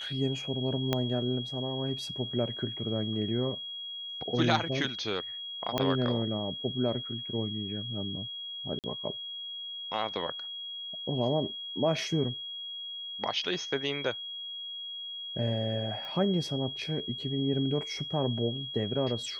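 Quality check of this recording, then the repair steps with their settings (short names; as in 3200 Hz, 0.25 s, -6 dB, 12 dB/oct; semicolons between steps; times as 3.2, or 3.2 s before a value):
tone 3300 Hz -37 dBFS
0.93 pop -13 dBFS
5.78 pop -14 dBFS
8.79–8.84 gap 48 ms
16.05 pop -29 dBFS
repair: de-click; notch 3300 Hz, Q 30; interpolate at 8.79, 48 ms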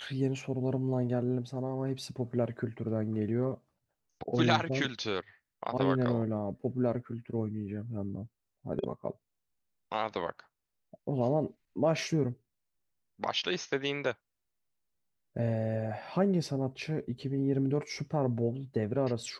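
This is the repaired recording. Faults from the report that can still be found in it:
0.93 pop
5.78 pop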